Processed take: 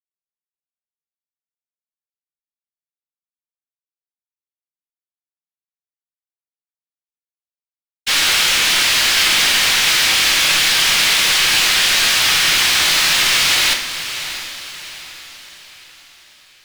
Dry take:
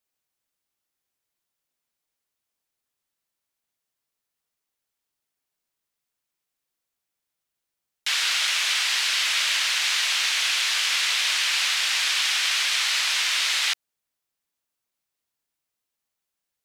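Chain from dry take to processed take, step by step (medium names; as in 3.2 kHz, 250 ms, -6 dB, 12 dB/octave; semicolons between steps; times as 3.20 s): expander -19 dBFS; waveshaping leveller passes 5; echo that smears into a reverb 666 ms, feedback 44%, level -11 dB; reverberation RT60 0.65 s, pre-delay 6 ms, DRR 2.5 dB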